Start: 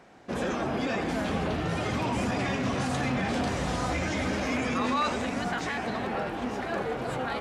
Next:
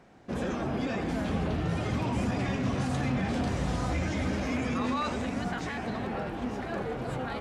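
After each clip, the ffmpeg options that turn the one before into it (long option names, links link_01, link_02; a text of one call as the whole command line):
ffmpeg -i in.wav -af "lowshelf=frequency=250:gain=9,volume=-5dB" out.wav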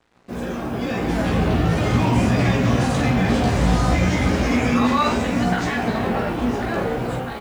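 ffmpeg -i in.wav -af "dynaudnorm=framelen=630:gausssize=3:maxgain=9dB,acrusher=bits=7:mix=0:aa=0.5,aecho=1:1:17|50:0.708|0.531" out.wav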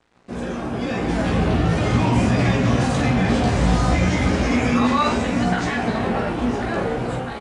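ffmpeg -i in.wav -af "aresample=22050,aresample=44100" out.wav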